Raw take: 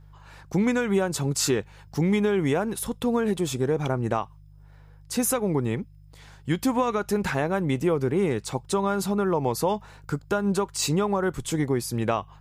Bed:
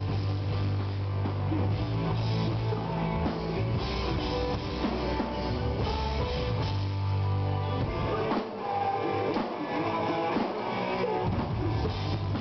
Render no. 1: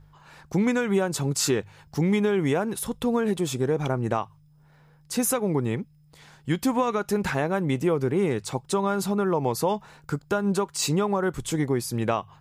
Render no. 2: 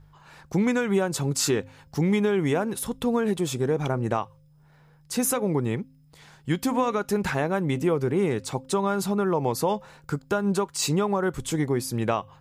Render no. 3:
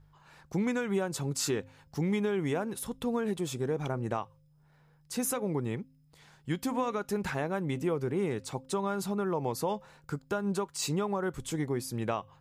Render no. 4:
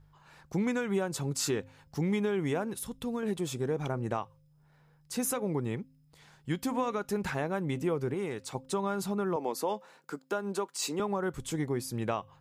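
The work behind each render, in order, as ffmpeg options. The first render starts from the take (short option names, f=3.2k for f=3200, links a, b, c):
-af "bandreject=f=50:t=h:w=4,bandreject=f=100:t=h:w=4"
-af "bandreject=f=263.2:t=h:w=4,bandreject=f=526.4:t=h:w=4"
-af "volume=-7dB"
-filter_complex "[0:a]asettb=1/sr,asplit=3[a][b][c];[a]atrim=end=2.744[d];[b]atrim=start=2.74:end=3.23,asetpts=PTS-STARTPTS,afade=t=in:d=0.004:c=qsin,afade=t=out:st=0.486:d=0.004:c=qsin,equalizer=f=700:t=o:w=2.9:g=-5.5[e];[c]atrim=start=3.226[f];[d][e]acrossfade=d=0.004:c1=hsin:c2=qsin[g];[g][f]acrossfade=d=0.004:c1=qsin:c2=hsin,asettb=1/sr,asplit=3[h][i][j];[h]atrim=end=8.144[k];[i]atrim=start=8.14:end=8.55,asetpts=PTS-STARTPTS,afade=t=in:d=0.004:c=qsin,afade=t=out:st=0.406:d=0.004:c=qsin,lowshelf=f=390:g=-7[l];[j]atrim=start=8.546[m];[k][l]acrossfade=d=0.004:c1=hsin:c2=qsin[n];[n][m]acrossfade=d=0.004:c1=qsin:c2=hsin,asettb=1/sr,asplit=3[o][p][q];[o]atrim=end=9.364[r];[p]atrim=start=9.36:end=11,asetpts=PTS-STARTPTS,afade=t=in:d=0.004:c=qsin,afade=t=out:st=1.636:d=0.004:c=qsin,highpass=f=230:w=0.5412,highpass=f=230:w=1.3066[s];[q]atrim=start=10.996[t];[r][s]acrossfade=d=0.004:c1=hsin:c2=qsin[u];[u][t]acrossfade=d=0.004:c1=qsin:c2=hsin"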